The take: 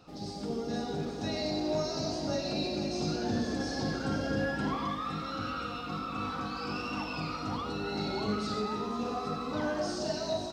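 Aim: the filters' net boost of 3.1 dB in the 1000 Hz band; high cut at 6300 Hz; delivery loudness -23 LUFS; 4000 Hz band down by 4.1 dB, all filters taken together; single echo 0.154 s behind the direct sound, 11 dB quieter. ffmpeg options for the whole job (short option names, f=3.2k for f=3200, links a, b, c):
-af "lowpass=6.3k,equalizer=f=1k:t=o:g=4.5,equalizer=f=4k:t=o:g=-4,aecho=1:1:154:0.282,volume=9.5dB"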